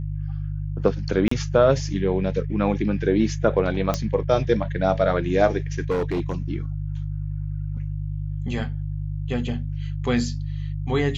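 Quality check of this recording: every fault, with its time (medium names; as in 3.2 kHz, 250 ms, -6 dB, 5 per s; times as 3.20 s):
hum 50 Hz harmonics 3 -28 dBFS
1.28–1.31 s: dropout 34 ms
3.94 s: pop -9 dBFS
5.90–6.36 s: clipped -19.5 dBFS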